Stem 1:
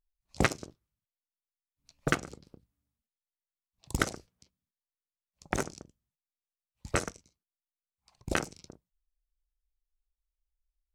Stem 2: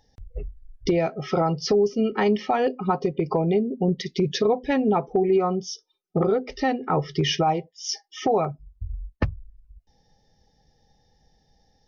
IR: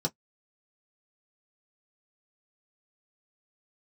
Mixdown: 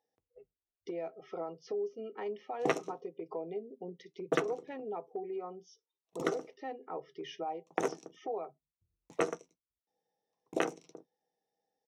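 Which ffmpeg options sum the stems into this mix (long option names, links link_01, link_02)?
-filter_complex "[0:a]agate=range=-22dB:threshold=-56dB:ratio=16:detection=peak,adelay=2250,volume=-1dB,asplit=2[link_01][link_02];[link_02]volume=-9.5dB[link_03];[1:a]volume=-17.5dB,asplit=3[link_04][link_05][link_06];[link_05]volume=-16dB[link_07];[link_06]apad=whole_len=582076[link_08];[link_01][link_08]sidechaincompress=threshold=-41dB:ratio=8:attack=16:release=103[link_09];[2:a]atrim=start_sample=2205[link_10];[link_03][link_07]amix=inputs=2:normalize=0[link_11];[link_11][link_10]afir=irnorm=-1:irlink=0[link_12];[link_09][link_04][link_12]amix=inputs=3:normalize=0,highpass=340,highshelf=frequency=2900:gain=-9.5"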